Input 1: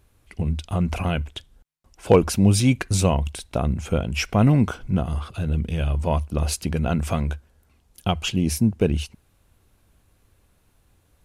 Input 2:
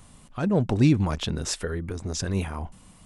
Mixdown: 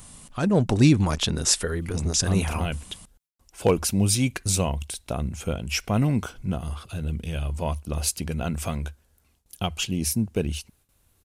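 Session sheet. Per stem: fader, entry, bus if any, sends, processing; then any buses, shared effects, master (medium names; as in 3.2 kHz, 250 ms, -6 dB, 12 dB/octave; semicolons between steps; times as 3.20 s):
-5.5 dB, 1.55 s, no send, gate with hold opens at -52 dBFS
+2.0 dB, 0.00 s, no send, none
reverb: none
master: treble shelf 4.2 kHz +10.5 dB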